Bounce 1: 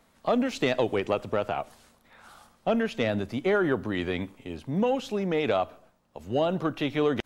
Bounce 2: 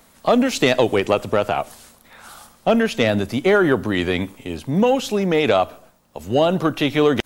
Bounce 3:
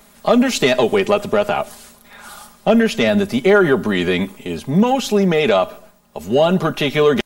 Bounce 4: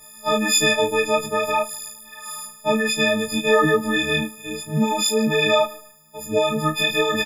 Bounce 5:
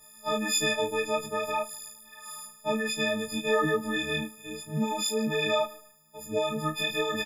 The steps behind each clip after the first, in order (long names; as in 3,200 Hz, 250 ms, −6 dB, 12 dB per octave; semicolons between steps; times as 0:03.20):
high-shelf EQ 6,100 Hz +11 dB; level +8.5 dB
comb filter 4.9 ms, depth 63%; in parallel at −1 dB: brickwall limiter −11 dBFS, peak gain reduction 10 dB; on the sum: level −3 dB
every partial snapped to a pitch grid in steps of 6 semitones; micro pitch shift up and down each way 19 cents; level −3 dB
Butterworth band-reject 2,200 Hz, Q 5.5; level −8.5 dB